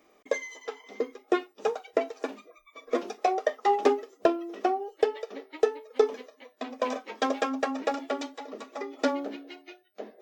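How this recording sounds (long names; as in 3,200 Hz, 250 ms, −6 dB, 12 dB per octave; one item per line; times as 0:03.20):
background noise floor −64 dBFS
spectral slope −1.0 dB per octave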